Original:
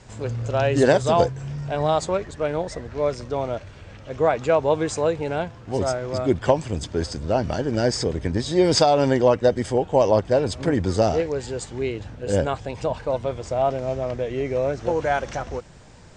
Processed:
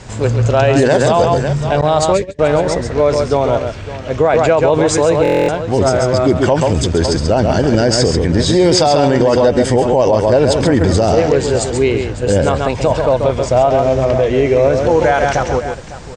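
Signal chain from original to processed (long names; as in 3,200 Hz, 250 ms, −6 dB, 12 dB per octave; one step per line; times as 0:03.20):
multi-tap delay 136/555 ms −7/−16.5 dB
0:01.81–0:02.39: noise gate −24 dBFS, range −28 dB
0:02.15–0:02.40: gain on a spectral selection 600–1,600 Hz −13 dB
boost into a limiter +15 dB
buffer that repeats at 0:05.23, samples 1,024, times 10
level −2 dB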